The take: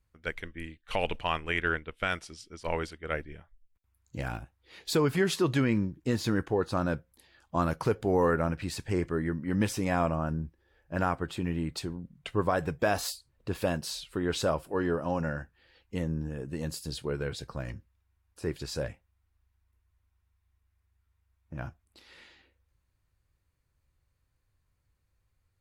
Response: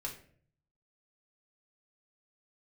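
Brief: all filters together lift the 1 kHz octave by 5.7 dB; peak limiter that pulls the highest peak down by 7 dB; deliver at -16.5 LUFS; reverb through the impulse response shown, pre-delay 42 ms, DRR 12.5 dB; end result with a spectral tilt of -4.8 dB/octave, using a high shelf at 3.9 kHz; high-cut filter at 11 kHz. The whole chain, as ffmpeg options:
-filter_complex "[0:a]lowpass=11000,equalizer=f=1000:t=o:g=7,highshelf=f=3900:g=5.5,alimiter=limit=0.141:level=0:latency=1,asplit=2[s0][s1];[1:a]atrim=start_sample=2205,adelay=42[s2];[s1][s2]afir=irnorm=-1:irlink=0,volume=0.237[s3];[s0][s3]amix=inputs=2:normalize=0,volume=5.31"

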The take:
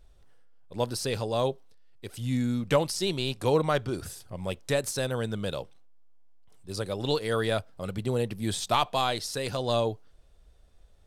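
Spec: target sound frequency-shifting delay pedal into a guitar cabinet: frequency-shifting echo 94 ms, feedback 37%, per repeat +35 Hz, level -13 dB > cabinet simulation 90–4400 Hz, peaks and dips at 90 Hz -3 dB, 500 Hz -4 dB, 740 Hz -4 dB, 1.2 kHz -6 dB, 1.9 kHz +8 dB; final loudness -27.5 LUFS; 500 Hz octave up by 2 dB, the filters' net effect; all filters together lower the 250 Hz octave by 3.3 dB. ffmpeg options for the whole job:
-filter_complex "[0:a]equalizer=f=250:t=o:g=-6,equalizer=f=500:t=o:g=7,asplit=5[s0][s1][s2][s3][s4];[s1]adelay=94,afreqshift=35,volume=0.224[s5];[s2]adelay=188,afreqshift=70,volume=0.0832[s6];[s3]adelay=282,afreqshift=105,volume=0.0305[s7];[s4]adelay=376,afreqshift=140,volume=0.0114[s8];[s0][s5][s6][s7][s8]amix=inputs=5:normalize=0,highpass=90,equalizer=f=90:t=q:w=4:g=-3,equalizer=f=500:t=q:w=4:g=-4,equalizer=f=740:t=q:w=4:g=-4,equalizer=f=1200:t=q:w=4:g=-6,equalizer=f=1900:t=q:w=4:g=8,lowpass=f=4400:w=0.5412,lowpass=f=4400:w=1.3066,volume=1.19"

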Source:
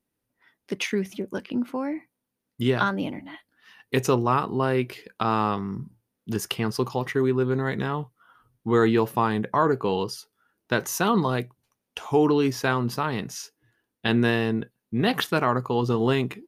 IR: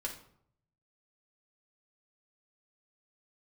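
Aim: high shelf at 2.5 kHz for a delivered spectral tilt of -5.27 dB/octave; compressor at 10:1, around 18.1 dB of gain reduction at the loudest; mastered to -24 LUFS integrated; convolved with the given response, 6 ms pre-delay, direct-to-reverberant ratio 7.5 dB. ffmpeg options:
-filter_complex "[0:a]highshelf=f=2500:g=-5.5,acompressor=threshold=0.0178:ratio=10,asplit=2[s0][s1];[1:a]atrim=start_sample=2205,adelay=6[s2];[s1][s2]afir=irnorm=-1:irlink=0,volume=0.398[s3];[s0][s3]amix=inputs=2:normalize=0,volume=6.31"

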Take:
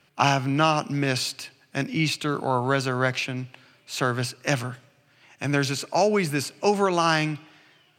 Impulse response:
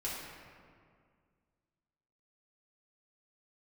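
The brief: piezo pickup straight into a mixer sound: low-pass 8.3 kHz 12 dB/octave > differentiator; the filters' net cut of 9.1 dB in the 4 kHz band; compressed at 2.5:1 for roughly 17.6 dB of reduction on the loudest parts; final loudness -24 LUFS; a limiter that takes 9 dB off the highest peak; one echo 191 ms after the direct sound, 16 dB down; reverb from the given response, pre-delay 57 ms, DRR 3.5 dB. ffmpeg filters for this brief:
-filter_complex "[0:a]equalizer=f=4000:t=o:g=-5,acompressor=threshold=0.00631:ratio=2.5,alimiter=level_in=1.88:limit=0.0631:level=0:latency=1,volume=0.531,aecho=1:1:191:0.158,asplit=2[s0][s1];[1:a]atrim=start_sample=2205,adelay=57[s2];[s1][s2]afir=irnorm=-1:irlink=0,volume=0.473[s3];[s0][s3]amix=inputs=2:normalize=0,lowpass=8300,aderivative,volume=25.1"

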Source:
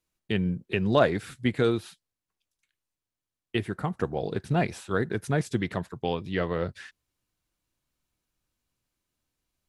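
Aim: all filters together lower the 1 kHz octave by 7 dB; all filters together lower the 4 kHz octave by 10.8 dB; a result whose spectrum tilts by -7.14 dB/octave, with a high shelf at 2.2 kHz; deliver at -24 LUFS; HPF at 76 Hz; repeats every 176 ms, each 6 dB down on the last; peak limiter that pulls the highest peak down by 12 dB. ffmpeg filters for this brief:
-af "highpass=76,equalizer=f=1000:t=o:g=-9,highshelf=f=2200:g=-7.5,equalizer=f=4000:t=o:g=-7,alimiter=limit=0.0668:level=0:latency=1,aecho=1:1:176|352|528|704|880|1056:0.501|0.251|0.125|0.0626|0.0313|0.0157,volume=3.16"

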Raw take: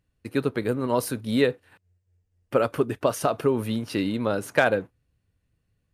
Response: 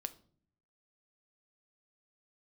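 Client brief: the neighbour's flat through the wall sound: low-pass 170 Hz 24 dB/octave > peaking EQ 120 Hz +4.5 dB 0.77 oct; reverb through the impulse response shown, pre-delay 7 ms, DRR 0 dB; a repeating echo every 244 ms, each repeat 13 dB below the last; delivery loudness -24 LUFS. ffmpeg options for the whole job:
-filter_complex "[0:a]aecho=1:1:244|488|732:0.224|0.0493|0.0108,asplit=2[s0][s1];[1:a]atrim=start_sample=2205,adelay=7[s2];[s1][s2]afir=irnorm=-1:irlink=0,volume=1.26[s3];[s0][s3]amix=inputs=2:normalize=0,lowpass=f=170:w=0.5412,lowpass=f=170:w=1.3066,equalizer=f=120:t=o:w=0.77:g=4.5,volume=2.11"

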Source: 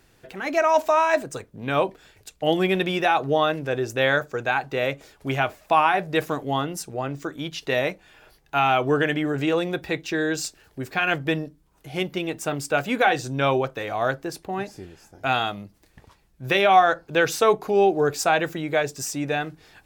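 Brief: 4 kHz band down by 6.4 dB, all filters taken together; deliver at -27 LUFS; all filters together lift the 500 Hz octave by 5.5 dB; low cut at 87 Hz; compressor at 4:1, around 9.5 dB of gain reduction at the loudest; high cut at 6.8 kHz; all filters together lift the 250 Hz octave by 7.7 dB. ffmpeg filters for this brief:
-af "highpass=87,lowpass=6800,equalizer=f=250:t=o:g=9,equalizer=f=500:t=o:g=4.5,equalizer=f=4000:t=o:g=-8.5,acompressor=threshold=0.1:ratio=4,volume=0.841"

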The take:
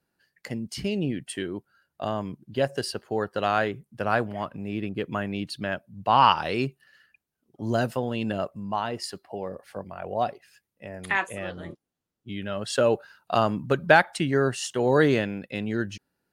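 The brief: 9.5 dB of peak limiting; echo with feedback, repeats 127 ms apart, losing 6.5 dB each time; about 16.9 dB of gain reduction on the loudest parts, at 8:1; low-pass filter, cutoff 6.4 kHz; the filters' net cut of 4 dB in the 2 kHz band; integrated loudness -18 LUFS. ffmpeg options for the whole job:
-af "lowpass=6400,equalizer=f=2000:t=o:g=-5.5,acompressor=threshold=0.0282:ratio=8,alimiter=level_in=1.41:limit=0.0631:level=0:latency=1,volume=0.708,aecho=1:1:127|254|381|508|635|762:0.473|0.222|0.105|0.0491|0.0231|0.0109,volume=10"

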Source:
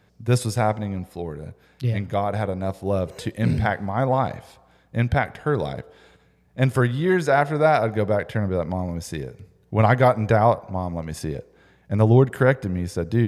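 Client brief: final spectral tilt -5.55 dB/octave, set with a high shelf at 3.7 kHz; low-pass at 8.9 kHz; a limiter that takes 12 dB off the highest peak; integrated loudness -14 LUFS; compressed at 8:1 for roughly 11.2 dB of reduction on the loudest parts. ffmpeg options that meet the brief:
-af "lowpass=8900,highshelf=f=3700:g=8.5,acompressor=threshold=0.0708:ratio=8,volume=10.6,alimiter=limit=0.668:level=0:latency=1"

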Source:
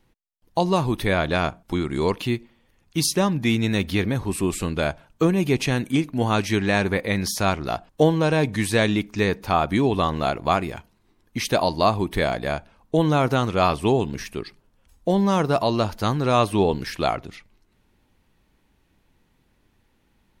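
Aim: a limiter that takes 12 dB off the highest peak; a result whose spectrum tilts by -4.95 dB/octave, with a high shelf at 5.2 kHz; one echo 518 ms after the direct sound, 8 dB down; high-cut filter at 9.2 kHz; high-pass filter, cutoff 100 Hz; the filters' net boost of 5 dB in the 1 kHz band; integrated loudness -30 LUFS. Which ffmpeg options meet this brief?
-af "highpass=100,lowpass=9200,equalizer=f=1000:t=o:g=6.5,highshelf=f=5200:g=4,alimiter=limit=0.211:level=0:latency=1,aecho=1:1:518:0.398,volume=0.596"

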